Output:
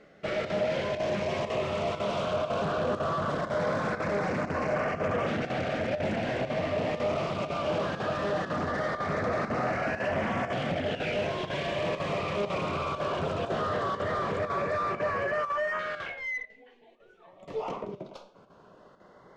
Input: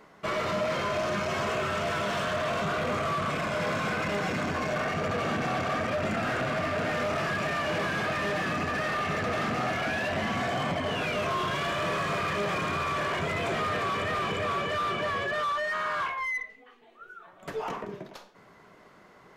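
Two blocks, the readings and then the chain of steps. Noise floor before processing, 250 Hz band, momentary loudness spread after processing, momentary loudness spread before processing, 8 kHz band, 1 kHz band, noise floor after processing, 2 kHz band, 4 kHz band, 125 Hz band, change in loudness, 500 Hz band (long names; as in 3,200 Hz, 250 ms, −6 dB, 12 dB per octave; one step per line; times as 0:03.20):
−55 dBFS, −0.5 dB, 4 LU, 2 LU, −7.5 dB, −2.5 dB, −56 dBFS, −4.5 dB, −4.5 dB, −0.5 dB, −1.0 dB, +2.0 dB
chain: parametric band 550 Hz +6 dB 0.34 octaves
auto-filter notch saw up 0.19 Hz 960–4,000 Hz
square-wave tremolo 2 Hz, depth 60%, duty 90%
high-frequency loss of the air 82 metres
highs frequency-modulated by the lows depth 0.32 ms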